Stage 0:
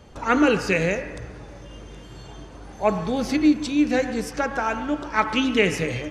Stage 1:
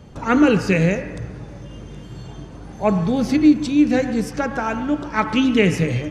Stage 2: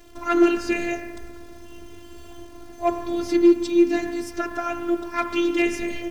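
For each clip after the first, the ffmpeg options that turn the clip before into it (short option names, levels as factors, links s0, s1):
-af "equalizer=f=150:t=o:w=1.9:g=10"
-af "asoftclip=type=hard:threshold=0.422,acrusher=bits=9:dc=4:mix=0:aa=0.000001,afftfilt=real='hypot(re,im)*cos(PI*b)':imag='0':win_size=512:overlap=0.75"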